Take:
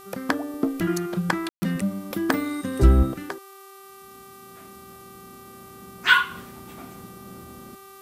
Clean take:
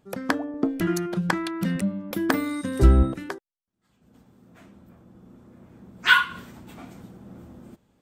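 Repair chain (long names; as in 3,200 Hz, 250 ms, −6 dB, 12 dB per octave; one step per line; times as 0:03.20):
hum removal 388.2 Hz, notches 15
notch filter 1,200 Hz, Q 30
ambience match 0:01.49–0:01.62
noise reduction from a noise print 18 dB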